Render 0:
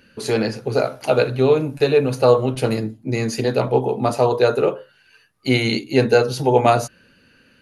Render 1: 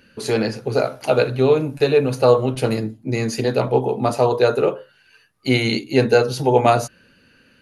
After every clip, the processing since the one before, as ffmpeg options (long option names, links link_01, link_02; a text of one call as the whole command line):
ffmpeg -i in.wav -af anull out.wav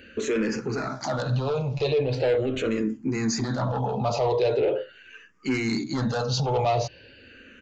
ffmpeg -i in.wav -filter_complex "[0:a]aresample=16000,asoftclip=type=tanh:threshold=-14dB,aresample=44100,alimiter=level_in=0.5dB:limit=-24dB:level=0:latency=1:release=25,volume=-0.5dB,asplit=2[link_01][link_02];[link_02]afreqshift=-0.41[link_03];[link_01][link_03]amix=inputs=2:normalize=1,volume=7.5dB" out.wav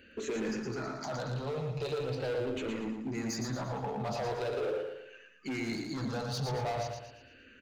ffmpeg -i in.wav -filter_complex "[0:a]asoftclip=type=hard:threshold=-23dB,asplit=2[link_01][link_02];[link_02]aecho=0:1:115|230|345|460|575:0.562|0.225|0.09|0.036|0.0144[link_03];[link_01][link_03]amix=inputs=2:normalize=0,volume=-9dB" out.wav